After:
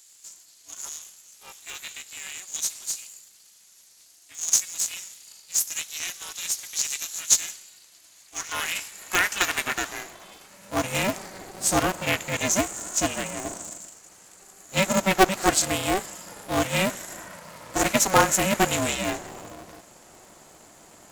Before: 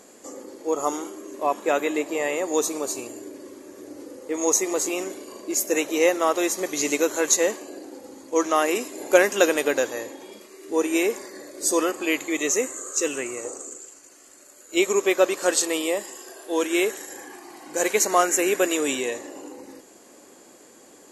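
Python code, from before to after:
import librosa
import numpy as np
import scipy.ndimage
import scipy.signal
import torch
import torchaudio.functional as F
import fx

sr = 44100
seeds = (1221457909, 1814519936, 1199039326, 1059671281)

y = fx.filter_sweep_highpass(x, sr, from_hz=3900.0, to_hz=490.0, start_s=7.43, end_s=11.28, q=1.1)
y = y * np.sign(np.sin(2.0 * np.pi * 190.0 * np.arange(len(y)) / sr))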